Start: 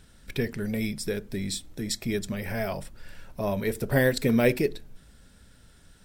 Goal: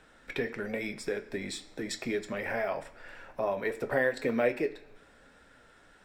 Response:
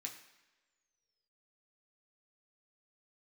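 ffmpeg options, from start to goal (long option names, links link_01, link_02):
-filter_complex "[0:a]acrossover=split=350 2100:gain=0.158 1 0.126[link_01][link_02][link_03];[link_01][link_02][link_03]amix=inputs=3:normalize=0,acompressor=threshold=-37dB:ratio=2,flanger=delay=6.3:depth=3.3:regen=-72:speed=1.1:shape=sinusoidal,asplit=2[link_04][link_05];[1:a]atrim=start_sample=2205,lowpass=7200,highshelf=frequency=3300:gain=10.5[link_06];[link_05][link_06]afir=irnorm=-1:irlink=0,volume=-3.5dB[link_07];[link_04][link_07]amix=inputs=2:normalize=0,volume=9dB"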